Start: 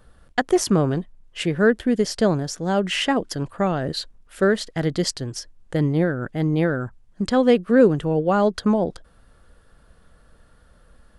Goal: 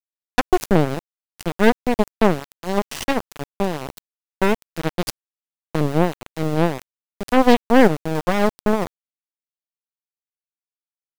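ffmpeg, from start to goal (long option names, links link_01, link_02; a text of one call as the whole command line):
ffmpeg -i in.wav -af "aeval=exprs='val(0)+0.00224*(sin(2*PI*50*n/s)+sin(2*PI*2*50*n/s)/2+sin(2*PI*3*50*n/s)/3+sin(2*PI*4*50*n/s)/4+sin(2*PI*5*50*n/s)/5)':channel_layout=same,aeval=exprs='0.596*(cos(1*acos(clip(val(0)/0.596,-1,1)))-cos(1*PI/2))+0.188*(cos(4*acos(clip(val(0)/0.596,-1,1)))-cos(4*PI/2))+0.00668*(cos(5*acos(clip(val(0)/0.596,-1,1)))-cos(5*PI/2))+0.0841*(cos(7*acos(clip(val(0)/0.596,-1,1)))-cos(7*PI/2))':channel_layout=same,aeval=exprs='val(0)*gte(abs(val(0)),0.0794)':channel_layout=same" out.wav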